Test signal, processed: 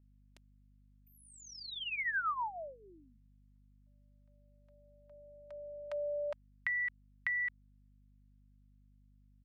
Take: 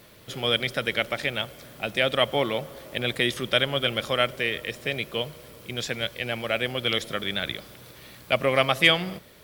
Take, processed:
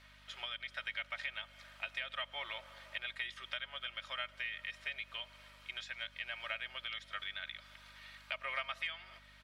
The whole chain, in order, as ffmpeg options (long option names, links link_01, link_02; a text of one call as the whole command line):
ffmpeg -i in.wav -af "highpass=1000,aderivative,acompressor=threshold=-42dB:ratio=6,aecho=1:1:3.2:0.6,aeval=exprs='val(0)+0.000178*(sin(2*PI*50*n/s)+sin(2*PI*2*50*n/s)/2+sin(2*PI*3*50*n/s)/3+sin(2*PI*4*50*n/s)/4+sin(2*PI*5*50*n/s)/5)':channel_layout=same,lowpass=1700,volume=11.5dB" out.wav